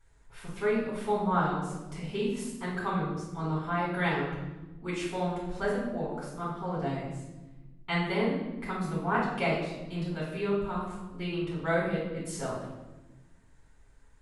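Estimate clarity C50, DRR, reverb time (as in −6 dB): 1.5 dB, −7.0 dB, 1.1 s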